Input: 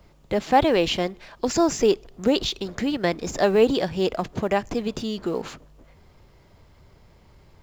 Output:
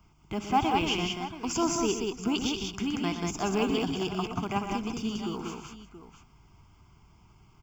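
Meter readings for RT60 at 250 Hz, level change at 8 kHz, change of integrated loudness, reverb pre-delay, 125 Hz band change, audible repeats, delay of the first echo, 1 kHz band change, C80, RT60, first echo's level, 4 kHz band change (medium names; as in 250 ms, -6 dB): no reverb, no reading, -6.5 dB, no reverb, -3.0 dB, 5, 62 ms, -4.5 dB, no reverb, no reverb, -16.5 dB, -4.0 dB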